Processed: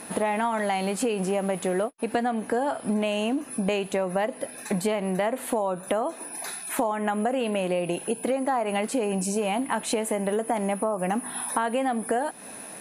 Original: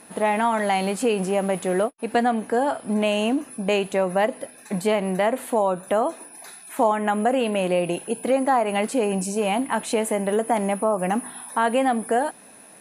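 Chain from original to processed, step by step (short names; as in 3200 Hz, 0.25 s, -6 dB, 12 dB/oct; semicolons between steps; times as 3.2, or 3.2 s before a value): compressor 4:1, threshold -32 dBFS, peak gain reduction 15 dB; gain +7 dB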